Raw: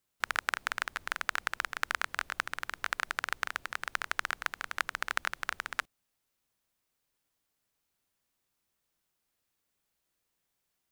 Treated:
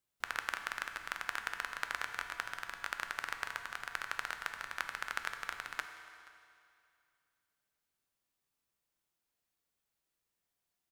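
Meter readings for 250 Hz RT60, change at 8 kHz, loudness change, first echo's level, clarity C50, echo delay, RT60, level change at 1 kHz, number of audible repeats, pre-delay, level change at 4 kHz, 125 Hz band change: 2.3 s, −5.0 dB, −5.0 dB, −22.5 dB, 7.5 dB, 478 ms, 2.4 s, −5.0 dB, 1, 7 ms, −5.0 dB, −5.0 dB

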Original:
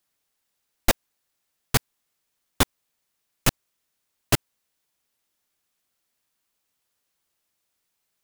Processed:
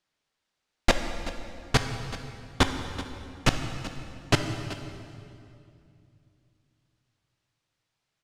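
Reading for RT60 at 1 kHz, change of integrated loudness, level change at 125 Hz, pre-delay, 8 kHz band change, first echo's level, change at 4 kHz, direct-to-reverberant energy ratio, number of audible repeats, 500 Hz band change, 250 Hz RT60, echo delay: 2.3 s, −3.5 dB, +1.5 dB, 11 ms, −7.0 dB, −15.5 dB, −0.5 dB, 6.0 dB, 1, +1.0 dB, 3.3 s, 381 ms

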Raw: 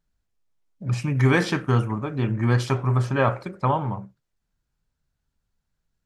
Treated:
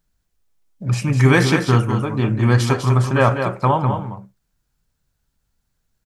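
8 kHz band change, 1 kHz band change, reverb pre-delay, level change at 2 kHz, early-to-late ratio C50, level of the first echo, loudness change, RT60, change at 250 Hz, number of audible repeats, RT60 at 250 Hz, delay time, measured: +9.5 dB, +6.0 dB, no reverb audible, +6.0 dB, no reverb audible, −7.0 dB, +6.0 dB, no reverb audible, +6.0 dB, 1, no reverb audible, 200 ms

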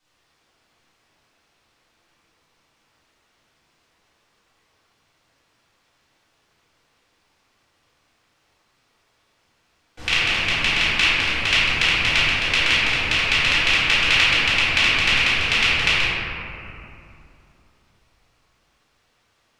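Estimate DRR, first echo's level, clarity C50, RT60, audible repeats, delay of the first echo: −15.0 dB, no echo audible, −4.5 dB, 2.8 s, no echo audible, no echo audible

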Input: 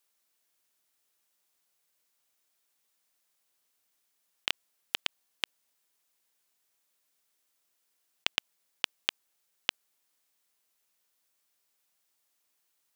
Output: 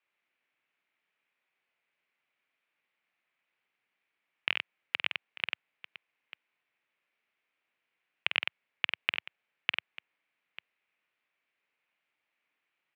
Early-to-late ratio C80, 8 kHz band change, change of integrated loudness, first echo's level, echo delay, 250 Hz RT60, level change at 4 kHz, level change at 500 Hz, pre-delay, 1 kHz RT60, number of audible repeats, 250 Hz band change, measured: no reverb audible, below −25 dB, +1.5 dB, −7.5 dB, 49 ms, no reverb audible, −1.5 dB, −1.0 dB, no reverb audible, no reverb audible, 3, −1.0 dB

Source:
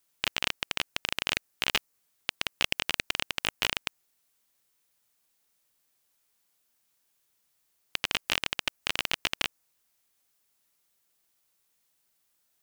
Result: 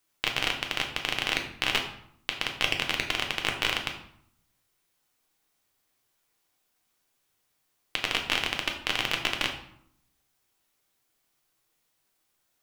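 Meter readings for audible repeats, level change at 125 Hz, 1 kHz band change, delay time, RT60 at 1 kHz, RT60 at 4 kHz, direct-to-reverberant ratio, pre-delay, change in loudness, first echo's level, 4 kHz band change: no echo audible, +5.5 dB, +4.0 dB, no echo audible, 0.70 s, 0.50 s, 2.0 dB, 3 ms, +2.0 dB, no echo audible, +2.0 dB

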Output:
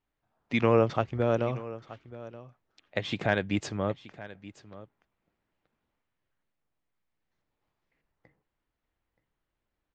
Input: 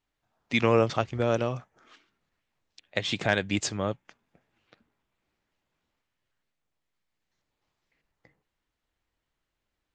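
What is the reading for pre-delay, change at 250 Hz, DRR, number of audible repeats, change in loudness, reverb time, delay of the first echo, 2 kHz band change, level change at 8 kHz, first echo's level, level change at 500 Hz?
no reverb audible, 0.0 dB, no reverb audible, 1, −1.5 dB, no reverb audible, 926 ms, −3.0 dB, −11.0 dB, −17.0 dB, −0.5 dB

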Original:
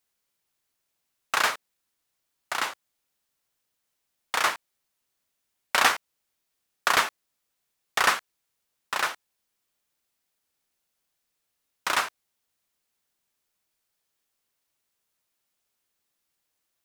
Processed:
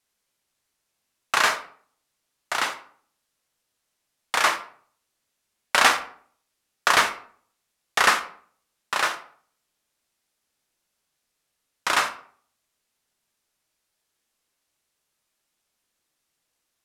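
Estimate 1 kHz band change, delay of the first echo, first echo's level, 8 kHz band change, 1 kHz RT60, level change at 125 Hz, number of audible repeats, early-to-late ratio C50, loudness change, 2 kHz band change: +3.5 dB, no echo audible, no echo audible, +3.5 dB, 0.50 s, +3.5 dB, no echo audible, 13.0 dB, +3.5 dB, +4.0 dB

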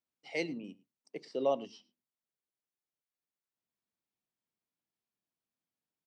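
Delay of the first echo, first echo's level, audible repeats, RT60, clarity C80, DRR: 106 ms, −22.5 dB, 1, no reverb audible, no reverb audible, no reverb audible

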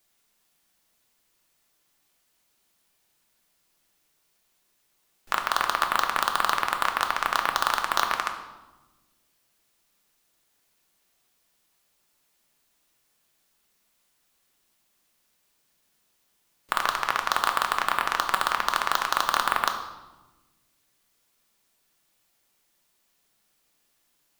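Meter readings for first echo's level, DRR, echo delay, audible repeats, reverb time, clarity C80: no echo audible, 4.0 dB, no echo audible, no echo audible, 1.1 s, 10.0 dB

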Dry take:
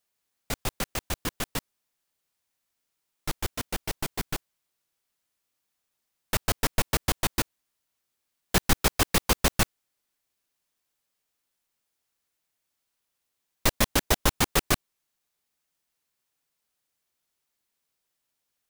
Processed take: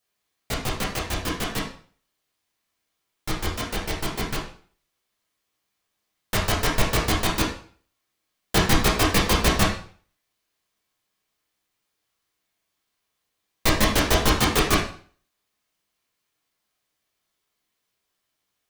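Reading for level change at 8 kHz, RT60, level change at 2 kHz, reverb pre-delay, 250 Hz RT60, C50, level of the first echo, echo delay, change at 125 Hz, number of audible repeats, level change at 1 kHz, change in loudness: +1.5 dB, 0.45 s, +5.5 dB, 5 ms, 0.45 s, 5.5 dB, no echo audible, no echo audible, +5.5 dB, no echo audible, +6.0 dB, +4.5 dB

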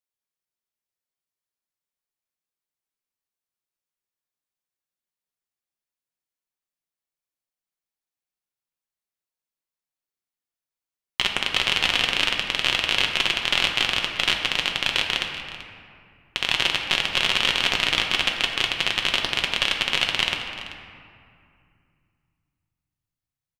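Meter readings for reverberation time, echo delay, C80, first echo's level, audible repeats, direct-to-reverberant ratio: 2.3 s, 385 ms, 5.0 dB, −15.5 dB, 1, 1.0 dB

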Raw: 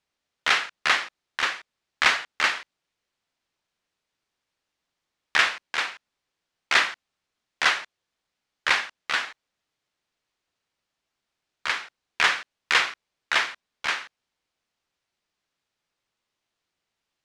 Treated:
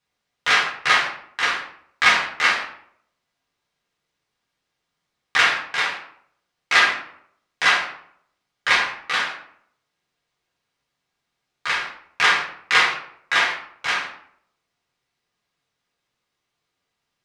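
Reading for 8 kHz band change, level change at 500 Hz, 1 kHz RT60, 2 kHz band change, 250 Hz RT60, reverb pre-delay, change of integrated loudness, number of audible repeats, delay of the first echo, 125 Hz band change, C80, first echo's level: +3.0 dB, +5.0 dB, 0.65 s, +5.0 dB, 0.70 s, 3 ms, +4.5 dB, no echo audible, no echo audible, can't be measured, 9.5 dB, no echo audible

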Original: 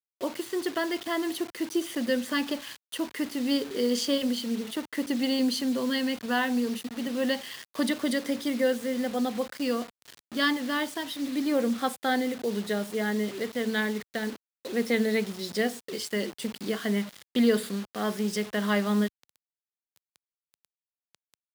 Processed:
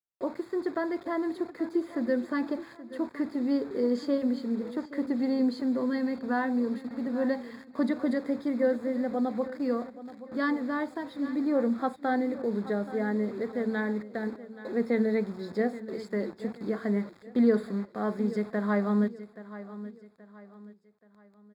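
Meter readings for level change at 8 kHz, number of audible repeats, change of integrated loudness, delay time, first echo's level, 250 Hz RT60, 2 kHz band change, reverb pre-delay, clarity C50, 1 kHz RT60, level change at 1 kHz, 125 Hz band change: below −20 dB, 3, −1.0 dB, 827 ms, −15.0 dB, no reverb audible, −6.0 dB, no reverb audible, no reverb audible, no reverb audible, −1.5 dB, can't be measured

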